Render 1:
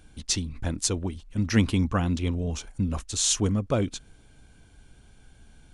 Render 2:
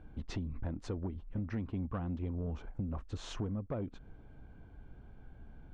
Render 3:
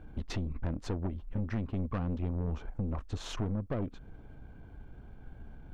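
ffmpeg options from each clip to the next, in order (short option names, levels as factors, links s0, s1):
-af "lowpass=1200,acompressor=threshold=0.0224:ratio=12,asoftclip=type=tanh:threshold=0.0335,volume=1.12"
-af "aeval=exprs='(tanh(50.1*val(0)+0.6)-tanh(0.6))/50.1':c=same,volume=2.24"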